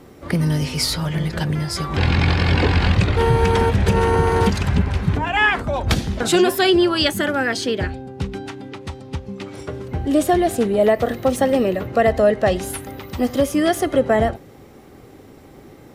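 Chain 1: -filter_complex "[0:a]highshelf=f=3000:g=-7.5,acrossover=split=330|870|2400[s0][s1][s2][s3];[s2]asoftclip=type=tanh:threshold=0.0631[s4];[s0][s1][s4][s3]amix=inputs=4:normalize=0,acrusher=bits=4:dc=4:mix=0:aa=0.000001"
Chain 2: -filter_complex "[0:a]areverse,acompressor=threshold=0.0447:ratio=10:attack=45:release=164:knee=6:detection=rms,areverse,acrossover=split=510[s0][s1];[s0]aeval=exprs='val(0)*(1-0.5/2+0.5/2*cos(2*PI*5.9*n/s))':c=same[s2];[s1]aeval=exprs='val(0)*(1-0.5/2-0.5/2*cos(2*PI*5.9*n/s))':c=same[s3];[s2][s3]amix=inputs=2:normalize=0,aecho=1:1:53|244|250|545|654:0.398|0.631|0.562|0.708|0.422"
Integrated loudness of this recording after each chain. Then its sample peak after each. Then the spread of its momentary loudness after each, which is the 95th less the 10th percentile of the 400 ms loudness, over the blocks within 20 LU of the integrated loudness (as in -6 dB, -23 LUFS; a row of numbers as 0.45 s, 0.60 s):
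-19.0 LUFS, -28.0 LUFS; -5.5 dBFS, -13.5 dBFS; 17 LU, 6 LU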